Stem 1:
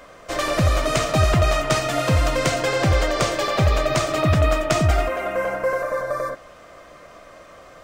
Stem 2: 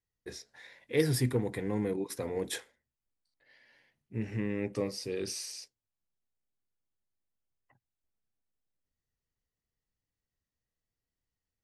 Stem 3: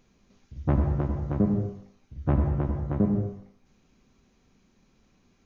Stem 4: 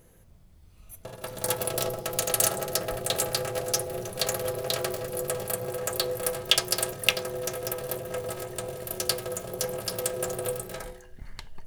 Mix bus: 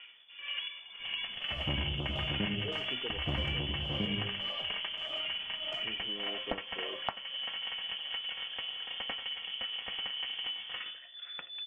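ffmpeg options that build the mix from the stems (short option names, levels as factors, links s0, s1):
-filter_complex "[0:a]equalizer=f=800:t=o:w=2.3:g=14.5,acompressor=threshold=0.316:ratio=6,aeval=exprs='val(0)*pow(10,-22*(0.5-0.5*cos(2*PI*1.7*n/s))/20)':c=same,volume=0.141,asplit=2[s0][s1];[s1]volume=0.2[s2];[1:a]highpass=370,adelay=1700,volume=0.473[s3];[2:a]adelay=1000,volume=0.75[s4];[3:a]lowshelf=f=350:g=-8,volume=1.26[s5];[s3][s4]amix=inputs=2:normalize=0,lowpass=f=1400:w=0.5412,lowpass=f=1400:w=1.3066,acompressor=threshold=0.01:ratio=2,volume=1[s6];[s0][s5]amix=inputs=2:normalize=0,lowpass=f=3000:t=q:w=0.5098,lowpass=f=3000:t=q:w=0.6013,lowpass=f=3000:t=q:w=0.9,lowpass=f=3000:t=q:w=2.563,afreqshift=-3500,acompressor=threshold=0.0158:ratio=3,volume=1[s7];[s2]aecho=0:1:1019:1[s8];[s6][s7][s8]amix=inputs=3:normalize=0"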